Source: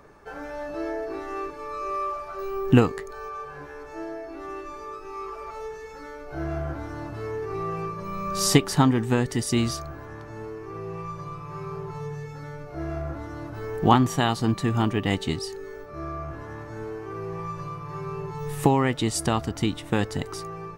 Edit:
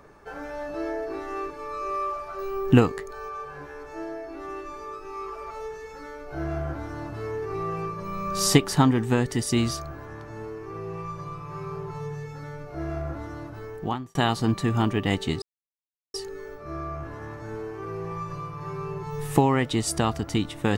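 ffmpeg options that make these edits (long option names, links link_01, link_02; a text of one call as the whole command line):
ffmpeg -i in.wav -filter_complex "[0:a]asplit=3[link_01][link_02][link_03];[link_01]atrim=end=14.15,asetpts=PTS-STARTPTS,afade=type=out:start_time=13.28:duration=0.87[link_04];[link_02]atrim=start=14.15:end=15.42,asetpts=PTS-STARTPTS,afade=type=in:duration=0.004:curve=hsin,afade=type=out:start_time=1.266:duration=0.004:curve=hsin,apad=pad_dur=0.72[link_05];[link_03]atrim=start=15.42,asetpts=PTS-STARTPTS,afade=type=in:duration=0.004:curve=hsin[link_06];[link_04][link_05][link_06]concat=n=3:v=0:a=1" out.wav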